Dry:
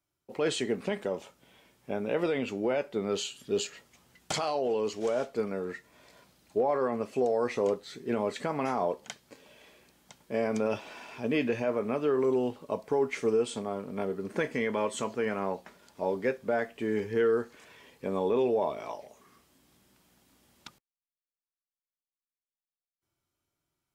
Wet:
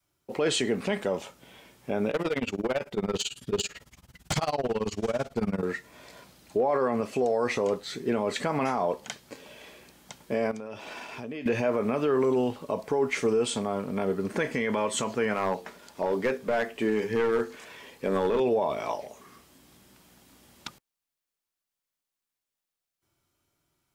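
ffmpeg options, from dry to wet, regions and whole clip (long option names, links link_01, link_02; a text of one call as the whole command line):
ffmpeg -i in.wav -filter_complex "[0:a]asettb=1/sr,asplit=3[link_01][link_02][link_03];[link_01]atrim=end=2.104[link_04];[link_02]atrim=start=2.1:end=5.63,asetpts=PTS-STARTPTS,afade=type=in:duration=0.004:curve=qsin,afade=type=out:start_time=3.526:duration=0.004:curve=qsin,tremolo=f=18:d=0.95,asubboost=boost=5.5:cutoff=180,asoftclip=type=hard:threshold=-29dB[link_05];[link_03]atrim=start=5.626[link_06];[link_04][link_05]acrossfade=duration=0.004:curve1=hsin:curve2=qsin[link_07];[link_07][link_06]acrossfade=duration=0.004:curve1=qsin:curve2=hsin,asettb=1/sr,asplit=3[link_08][link_09][link_10];[link_08]atrim=end=10.514[link_11];[link_09]atrim=start=10.51:end=11.46,asetpts=PTS-STARTPTS,afade=type=in:duration=0.004:curve=qsin,afade=type=out:start_time=0.946:duration=0.004:curve=qsin,agate=range=-33dB:threshold=-44dB:ratio=3:release=100:detection=peak,acompressor=threshold=-42dB:ratio=8:attack=3.2:release=140:knee=1:detection=peak[link_12];[link_10]atrim=start=11.456[link_13];[link_11][link_12]acrossfade=duration=0.004:curve1=hsin:curve2=qsin[link_14];[link_14][link_13]acrossfade=duration=0.004:curve1=qsin:curve2=hsin,asettb=1/sr,asplit=3[link_15][link_16][link_17];[link_15]atrim=end=15.344[link_18];[link_16]atrim=start=15.34:end=18.4,asetpts=PTS-STARTPTS,afade=type=in:duration=0.004:curve=qsin,afade=type=out:start_time=3.056:duration=0.004:curve=qsin,equalizer=frequency=100:width_type=o:width=1.1:gain=-5.5,bandreject=frequency=50:width_type=h:width=6,bandreject=frequency=100:width_type=h:width=6,bandreject=frequency=150:width_type=h:width=6,bandreject=frequency=200:width_type=h:width=6,bandreject=frequency=250:width_type=h:width=6,bandreject=frequency=300:width_type=h:width=6,bandreject=frequency=350:width_type=h:width=6,bandreject=frequency=400:width_type=h:width=6,bandreject=frequency=450:width_type=h:width=6,aeval=exprs='clip(val(0),-1,0.0501)':channel_layout=same[link_19];[link_17]atrim=start=18.396[link_20];[link_18][link_19]acrossfade=duration=0.004:curve1=hsin:curve2=qsin[link_21];[link_21][link_20]acrossfade=duration=0.004:curve1=qsin:curve2=hsin,adynamicequalizer=threshold=0.01:dfrequency=380:dqfactor=1.1:tfrequency=380:tqfactor=1.1:attack=5:release=100:ratio=0.375:range=2:mode=cutabove:tftype=bell,alimiter=level_in=1dB:limit=-24dB:level=0:latency=1:release=46,volume=-1dB,volume=8dB" out.wav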